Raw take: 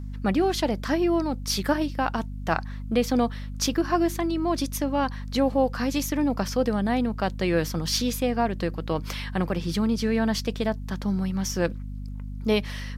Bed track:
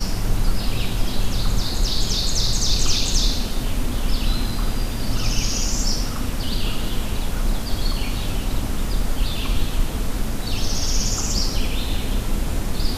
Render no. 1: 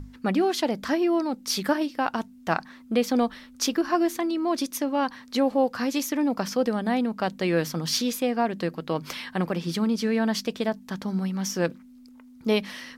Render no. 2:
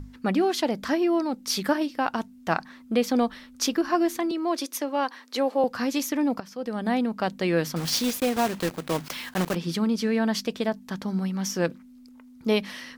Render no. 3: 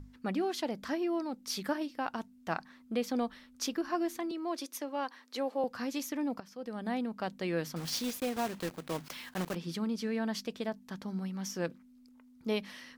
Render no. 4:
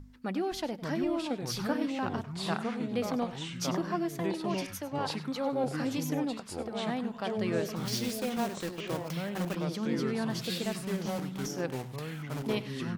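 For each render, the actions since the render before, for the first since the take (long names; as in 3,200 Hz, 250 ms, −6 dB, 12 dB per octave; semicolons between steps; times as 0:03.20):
mains-hum notches 50/100/150/200 Hz
0:04.31–0:05.64: inverse Chebyshev high-pass filter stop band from 150 Hz; 0:06.40–0:06.86: fade in quadratic, from −15 dB; 0:07.76–0:09.57: one scale factor per block 3 bits
level −9.5 dB
delay with pitch and tempo change per echo 517 ms, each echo −4 semitones, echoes 3; single-tap delay 98 ms −15.5 dB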